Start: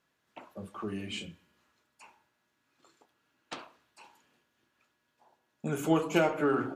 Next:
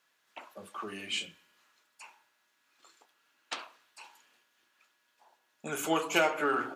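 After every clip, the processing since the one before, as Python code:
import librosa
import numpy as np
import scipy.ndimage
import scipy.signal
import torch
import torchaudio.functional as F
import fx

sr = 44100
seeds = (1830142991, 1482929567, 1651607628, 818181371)

y = fx.highpass(x, sr, hz=1300.0, slope=6)
y = F.gain(torch.from_numpy(y), 6.5).numpy()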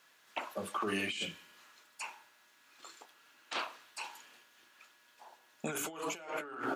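y = fx.over_compress(x, sr, threshold_db=-41.0, ratio=-1.0)
y = F.gain(torch.from_numpy(y), 1.5).numpy()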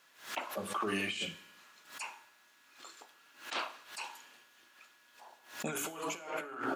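y = fx.rev_double_slope(x, sr, seeds[0], early_s=0.59, late_s=2.3, knee_db=-24, drr_db=12.5)
y = fx.pre_swell(y, sr, db_per_s=130.0)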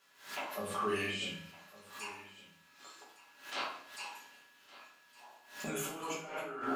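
y = x + 10.0 ** (-18.5 / 20.0) * np.pad(x, (int(1162 * sr / 1000.0), 0))[:len(x)]
y = fx.room_shoebox(y, sr, seeds[1], volume_m3=69.0, walls='mixed', distance_m=1.2)
y = F.gain(torch.from_numpy(y), -6.5).numpy()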